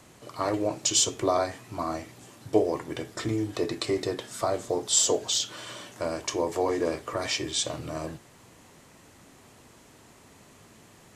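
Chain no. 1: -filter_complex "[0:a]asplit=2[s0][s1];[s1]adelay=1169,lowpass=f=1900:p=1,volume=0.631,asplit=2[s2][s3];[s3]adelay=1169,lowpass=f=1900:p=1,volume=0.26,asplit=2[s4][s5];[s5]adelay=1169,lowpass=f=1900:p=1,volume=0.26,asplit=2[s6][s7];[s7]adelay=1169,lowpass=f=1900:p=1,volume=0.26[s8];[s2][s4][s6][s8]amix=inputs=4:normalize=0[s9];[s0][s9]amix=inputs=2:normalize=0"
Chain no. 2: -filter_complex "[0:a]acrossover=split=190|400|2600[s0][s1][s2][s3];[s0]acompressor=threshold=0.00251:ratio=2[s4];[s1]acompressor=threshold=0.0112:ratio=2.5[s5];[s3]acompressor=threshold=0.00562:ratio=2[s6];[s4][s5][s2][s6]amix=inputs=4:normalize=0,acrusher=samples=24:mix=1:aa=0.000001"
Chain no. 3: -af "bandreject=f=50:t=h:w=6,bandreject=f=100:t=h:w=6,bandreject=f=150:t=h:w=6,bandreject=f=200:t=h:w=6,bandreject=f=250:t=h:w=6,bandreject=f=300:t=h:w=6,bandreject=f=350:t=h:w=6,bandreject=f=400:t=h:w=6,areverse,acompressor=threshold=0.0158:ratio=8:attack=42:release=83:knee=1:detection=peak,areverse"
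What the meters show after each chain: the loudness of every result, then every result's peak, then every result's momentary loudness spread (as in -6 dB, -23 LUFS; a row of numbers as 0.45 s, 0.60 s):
-28.0 LUFS, -31.5 LUFS, -35.5 LUFS; -7.5 dBFS, -12.5 dBFS, -17.5 dBFS; 14 LU, 10 LU, 21 LU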